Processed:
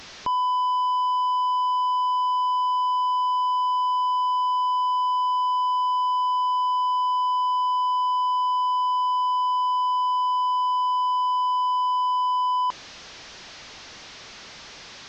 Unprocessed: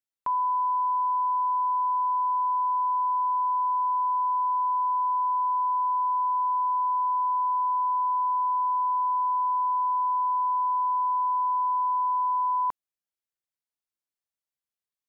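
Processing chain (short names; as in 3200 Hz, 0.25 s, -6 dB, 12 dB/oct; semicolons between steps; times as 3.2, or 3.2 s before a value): delta modulation 32 kbps, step -44.5 dBFS; gain +8.5 dB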